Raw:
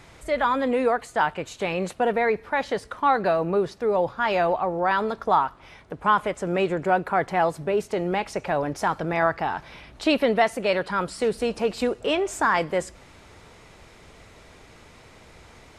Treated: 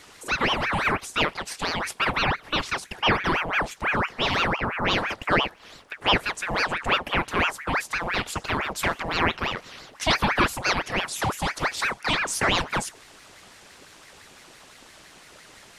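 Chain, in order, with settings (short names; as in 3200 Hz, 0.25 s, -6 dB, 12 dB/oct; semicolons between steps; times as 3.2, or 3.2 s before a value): high shelf 2600 Hz +11 dB; ring modulator with a swept carrier 1200 Hz, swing 75%, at 5.9 Hz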